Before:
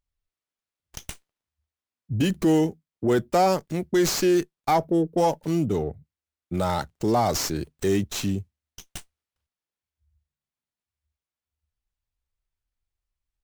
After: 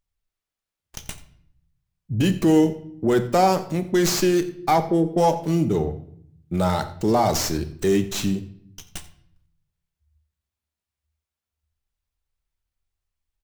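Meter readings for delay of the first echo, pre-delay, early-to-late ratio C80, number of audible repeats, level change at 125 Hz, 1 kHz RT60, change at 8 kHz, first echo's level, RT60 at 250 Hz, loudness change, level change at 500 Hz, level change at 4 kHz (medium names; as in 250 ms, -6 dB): 87 ms, 4 ms, 15.5 dB, 1, +3.5 dB, 0.60 s, +2.5 dB, -19.0 dB, 1.0 s, +2.5 dB, +2.5 dB, +2.5 dB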